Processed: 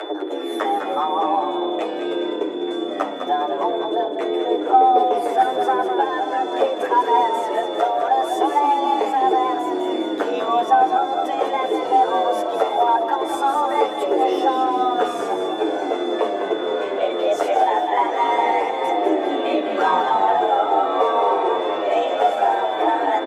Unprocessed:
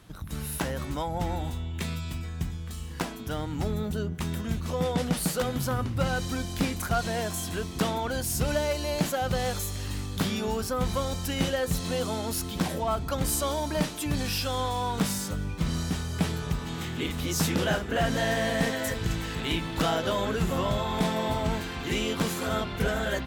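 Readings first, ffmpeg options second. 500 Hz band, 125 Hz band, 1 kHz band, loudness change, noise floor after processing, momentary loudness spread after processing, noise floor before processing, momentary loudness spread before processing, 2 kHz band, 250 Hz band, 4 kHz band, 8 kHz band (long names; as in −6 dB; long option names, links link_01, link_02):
+11.0 dB, below −20 dB, +17.0 dB, +9.5 dB, −27 dBFS, 6 LU, −36 dBFS, 6 LU, +3.5 dB, +4.5 dB, +2.0 dB, can't be measured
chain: -filter_complex "[0:a]equalizer=frequency=500:width_type=o:width=1:gain=11,equalizer=frequency=4000:width_type=o:width=1:gain=-11,equalizer=frequency=16000:width_type=o:width=1:gain=7,afreqshift=270,adynamicsmooth=sensitivity=5:basefreq=6000,aphaser=in_gain=1:out_gain=1:delay=2.1:decay=0.37:speed=0.21:type=triangular,bandreject=frequency=1700:width=27,acompressor=mode=upward:threshold=-23dB:ratio=2.5,highpass=59,aeval=exprs='val(0)+0.0126*sin(2*PI*3500*n/s)':channel_layout=same,asplit=7[link_01][link_02][link_03][link_04][link_05][link_06][link_07];[link_02]adelay=203,afreqshift=-33,volume=-7dB[link_08];[link_03]adelay=406,afreqshift=-66,volume=-12.7dB[link_09];[link_04]adelay=609,afreqshift=-99,volume=-18.4dB[link_10];[link_05]adelay=812,afreqshift=-132,volume=-24dB[link_11];[link_06]adelay=1015,afreqshift=-165,volume=-29.7dB[link_12];[link_07]adelay=1218,afreqshift=-198,volume=-35.4dB[link_13];[link_01][link_08][link_09][link_10][link_11][link_12][link_13]amix=inputs=7:normalize=0,alimiter=limit=-11.5dB:level=0:latency=1:release=462,aemphasis=mode=reproduction:type=75fm,asplit=2[link_14][link_15];[link_15]adelay=9.1,afreqshift=-1.8[link_16];[link_14][link_16]amix=inputs=2:normalize=1,volume=7dB"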